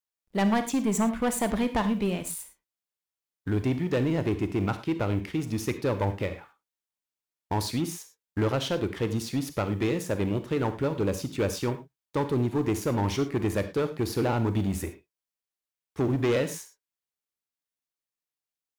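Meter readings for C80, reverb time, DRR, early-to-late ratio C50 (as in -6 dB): 15.5 dB, not exponential, 10.0 dB, 12.0 dB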